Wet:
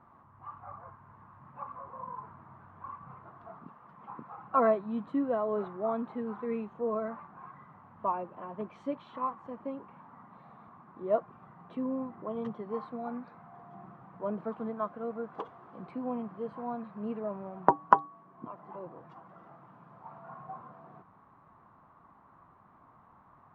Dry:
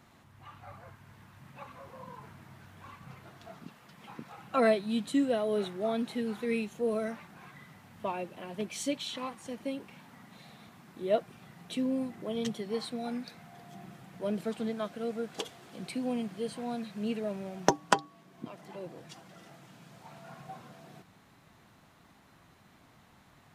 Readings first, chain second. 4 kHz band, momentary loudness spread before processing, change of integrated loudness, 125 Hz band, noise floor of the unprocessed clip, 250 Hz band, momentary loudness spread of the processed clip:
below −20 dB, 22 LU, −1.0 dB, −3.5 dB, −61 dBFS, −3.0 dB, 23 LU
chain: low-pass with resonance 1,100 Hz, resonance Q 4.4
level −3.5 dB

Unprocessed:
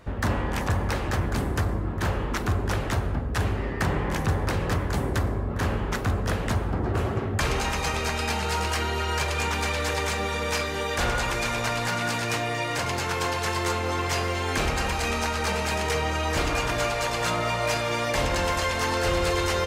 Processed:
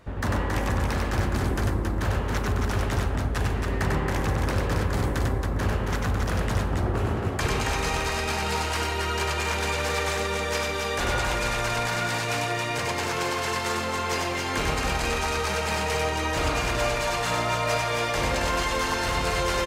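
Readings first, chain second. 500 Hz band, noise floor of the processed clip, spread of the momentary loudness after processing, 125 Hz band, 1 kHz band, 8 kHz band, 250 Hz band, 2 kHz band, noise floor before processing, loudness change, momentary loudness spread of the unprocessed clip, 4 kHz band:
0.0 dB, −29 dBFS, 2 LU, 0.0 dB, +0.5 dB, 0.0 dB, −0.5 dB, +0.5 dB, −29 dBFS, 0.0 dB, 3 LU, 0.0 dB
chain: loudspeakers that aren't time-aligned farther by 33 metres −3 dB, 94 metres −4 dB
level −2.5 dB

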